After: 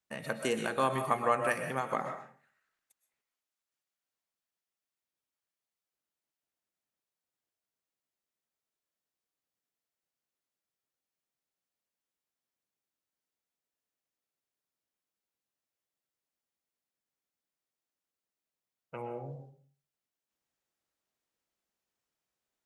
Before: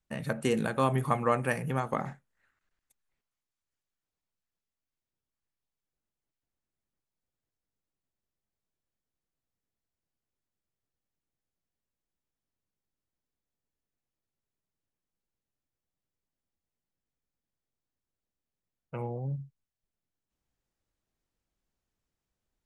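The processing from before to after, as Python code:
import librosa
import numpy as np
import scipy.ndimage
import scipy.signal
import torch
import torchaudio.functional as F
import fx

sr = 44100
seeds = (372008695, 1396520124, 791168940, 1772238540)

y = fx.highpass(x, sr, hz=470.0, slope=6)
y = fx.rev_freeverb(y, sr, rt60_s=0.46, hf_ratio=0.65, predelay_ms=85, drr_db=6.5)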